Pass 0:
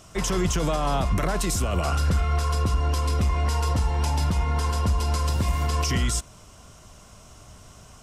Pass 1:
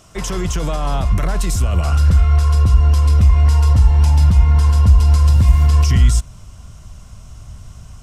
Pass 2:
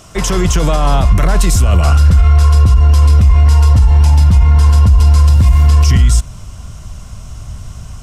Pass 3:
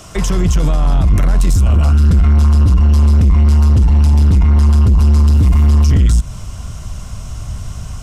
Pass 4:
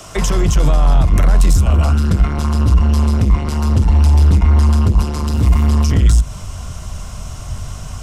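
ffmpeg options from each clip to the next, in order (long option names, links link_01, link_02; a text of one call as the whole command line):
ffmpeg -i in.wav -af "asubboost=boost=5:cutoff=160,volume=1.5dB" out.wav
ffmpeg -i in.wav -af "alimiter=level_in=9dB:limit=-1dB:release=50:level=0:latency=1,volume=-1dB" out.wav
ffmpeg -i in.wav -filter_complex "[0:a]acrossover=split=250[link_01][link_02];[link_02]acompressor=threshold=-25dB:ratio=4[link_03];[link_01][link_03]amix=inputs=2:normalize=0,asoftclip=type=tanh:threshold=-9dB,volume=3dB" out.wav
ffmpeg -i in.wav -filter_complex "[0:a]acrossover=split=320|910|1300[link_01][link_02][link_03][link_04];[link_01]flanger=delay=18:depth=6.8:speed=0.35[link_05];[link_02]crystalizer=i=8.5:c=0[link_06];[link_05][link_06][link_03][link_04]amix=inputs=4:normalize=0,volume=1.5dB" out.wav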